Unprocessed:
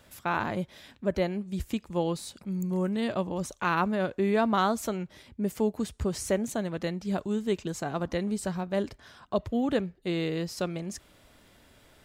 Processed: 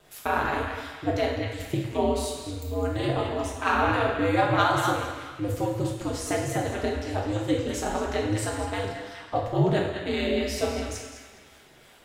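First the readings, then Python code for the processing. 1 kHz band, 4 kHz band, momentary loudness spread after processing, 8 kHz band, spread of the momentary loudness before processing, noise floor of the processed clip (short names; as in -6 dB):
+5.5 dB, +6.0 dB, 10 LU, +4.0 dB, 8 LU, -53 dBFS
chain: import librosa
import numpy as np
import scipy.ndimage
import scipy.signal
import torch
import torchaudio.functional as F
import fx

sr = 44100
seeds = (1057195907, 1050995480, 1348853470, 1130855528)

p1 = scipy.signal.sosfilt(scipy.signal.butter(2, 160.0, 'highpass', fs=sr, output='sos'), x)
p2 = fx.harmonic_tremolo(p1, sr, hz=2.9, depth_pct=50, crossover_hz=770.0)
p3 = p2 + fx.echo_banded(p2, sr, ms=207, feedback_pct=49, hz=2100.0, wet_db=-4.0, dry=0)
p4 = p3 * np.sin(2.0 * np.pi * 100.0 * np.arange(len(p3)) / sr)
p5 = fx.rev_double_slope(p4, sr, seeds[0], early_s=0.77, late_s=2.5, knee_db=-18, drr_db=-1.5)
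y = p5 * 10.0 ** (5.5 / 20.0)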